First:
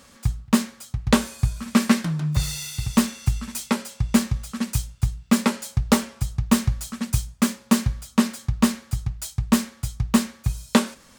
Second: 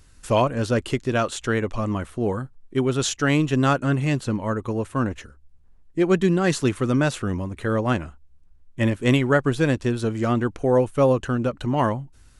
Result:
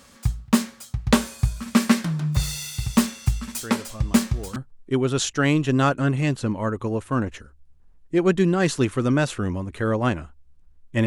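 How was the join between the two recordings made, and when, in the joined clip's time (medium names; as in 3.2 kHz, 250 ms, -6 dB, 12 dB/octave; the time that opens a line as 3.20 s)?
first
3.61 s: add second from 1.45 s 0.95 s -13 dB
4.56 s: go over to second from 2.40 s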